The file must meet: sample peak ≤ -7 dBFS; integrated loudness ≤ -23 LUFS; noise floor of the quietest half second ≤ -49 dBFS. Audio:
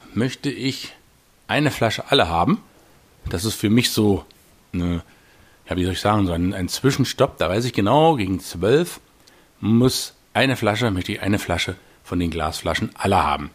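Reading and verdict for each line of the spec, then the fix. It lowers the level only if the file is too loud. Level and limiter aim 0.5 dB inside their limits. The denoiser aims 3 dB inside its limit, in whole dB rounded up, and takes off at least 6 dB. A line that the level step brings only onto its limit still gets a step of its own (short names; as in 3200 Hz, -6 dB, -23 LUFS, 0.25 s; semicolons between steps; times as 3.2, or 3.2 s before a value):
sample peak -3.0 dBFS: fail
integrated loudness -21.0 LUFS: fail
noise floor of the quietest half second -55 dBFS: OK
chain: gain -2.5 dB; limiter -7.5 dBFS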